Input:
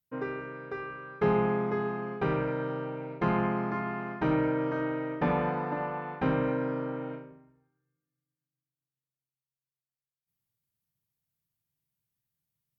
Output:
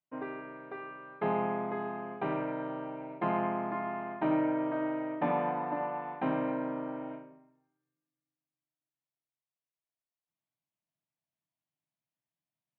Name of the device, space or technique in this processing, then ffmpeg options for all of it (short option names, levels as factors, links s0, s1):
kitchen radio: -af "highpass=200,equalizer=f=300:t=q:w=4:g=5,equalizer=f=460:t=q:w=4:g=-8,equalizer=f=650:t=q:w=4:g=10,equalizer=f=970:t=q:w=4:g=4,equalizer=f=1400:t=q:w=4:g=-4,lowpass=f=3400:w=0.5412,lowpass=f=3400:w=1.3066,volume=0.631"